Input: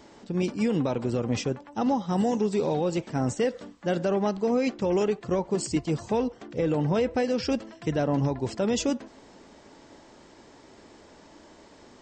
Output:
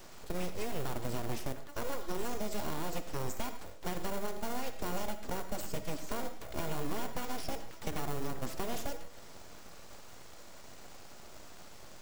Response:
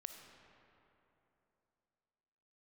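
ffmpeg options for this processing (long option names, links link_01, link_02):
-filter_complex "[0:a]acrossover=split=120|880[link_01][link_02][link_03];[link_01]acompressor=threshold=-43dB:ratio=4[link_04];[link_02]acompressor=threshold=-37dB:ratio=4[link_05];[link_03]acompressor=threshold=-47dB:ratio=4[link_06];[link_04][link_05][link_06]amix=inputs=3:normalize=0,asplit=2[link_07][link_08];[link_08]acrusher=samples=31:mix=1:aa=0.000001,volume=-7dB[link_09];[link_07][link_09]amix=inputs=2:normalize=0,crystalizer=i=1.5:c=0,aeval=exprs='abs(val(0))':channel_layout=same[link_10];[1:a]atrim=start_sample=2205,atrim=end_sample=6174[link_11];[link_10][link_11]afir=irnorm=-1:irlink=0,volume=4dB"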